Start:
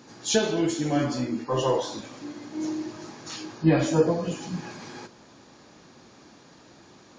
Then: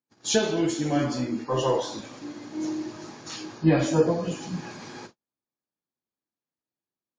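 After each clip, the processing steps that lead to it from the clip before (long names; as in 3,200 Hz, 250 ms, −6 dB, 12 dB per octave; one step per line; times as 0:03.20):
noise gate −44 dBFS, range −45 dB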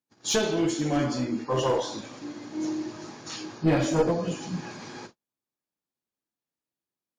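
asymmetric clip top −21 dBFS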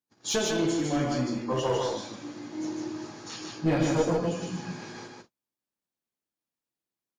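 single-tap delay 152 ms −3 dB
level −3 dB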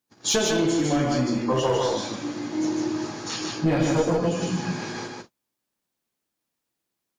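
downward compressor 2.5 to 1, threshold −30 dBFS, peak gain reduction 7.5 dB
level +9 dB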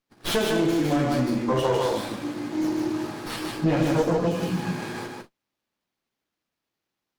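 windowed peak hold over 5 samples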